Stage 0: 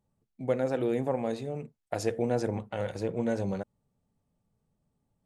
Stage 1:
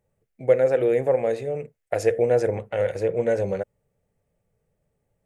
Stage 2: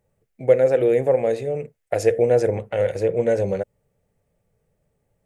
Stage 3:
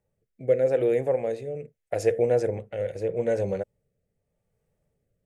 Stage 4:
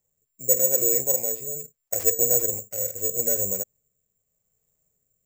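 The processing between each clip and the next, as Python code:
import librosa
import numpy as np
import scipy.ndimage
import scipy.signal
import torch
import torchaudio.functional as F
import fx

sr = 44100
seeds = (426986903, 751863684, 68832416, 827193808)

y1 = fx.graphic_eq(x, sr, hz=(250, 500, 1000, 2000, 4000), db=(-10, 10, -7, 8, -7))
y1 = y1 * librosa.db_to_amplitude(4.5)
y2 = fx.dynamic_eq(y1, sr, hz=1300.0, q=0.87, threshold_db=-37.0, ratio=4.0, max_db=-4)
y2 = y2 * librosa.db_to_amplitude(3.5)
y3 = fx.rotary(y2, sr, hz=0.8)
y3 = y3 * librosa.db_to_amplitude(-4.5)
y4 = (np.kron(y3[::6], np.eye(6)[0]) * 6)[:len(y3)]
y4 = y4 * librosa.db_to_amplitude(-6.5)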